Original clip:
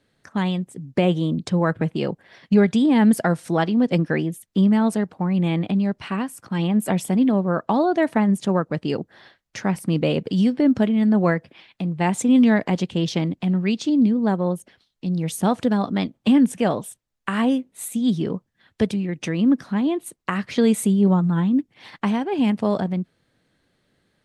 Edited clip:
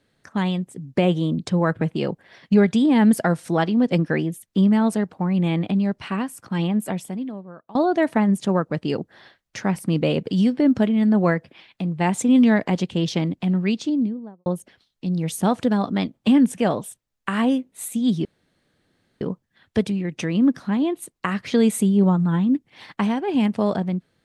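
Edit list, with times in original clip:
6.61–7.75 fade out quadratic, to -22.5 dB
13.66–14.46 studio fade out
18.25 insert room tone 0.96 s

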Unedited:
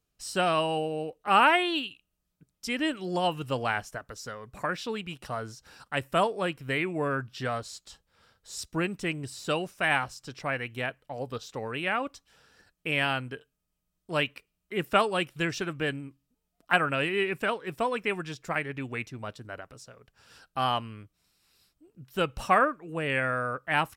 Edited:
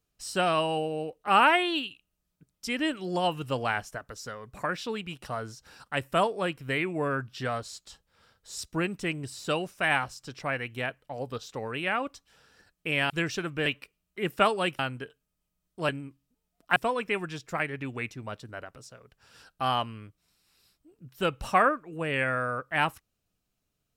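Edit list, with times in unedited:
13.1–14.2 swap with 15.33–15.89
16.76–17.72 cut

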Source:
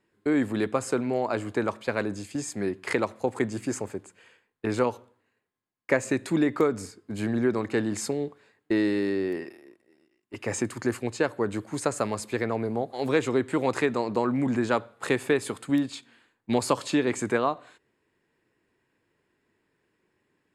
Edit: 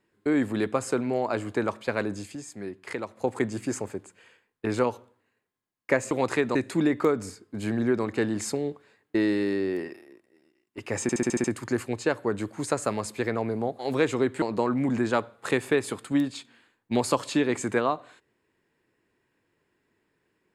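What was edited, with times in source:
2.35–3.17 gain -7.5 dB
10.58 stutter 0.07 s, 7 plays
13.56–14 move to 6.11

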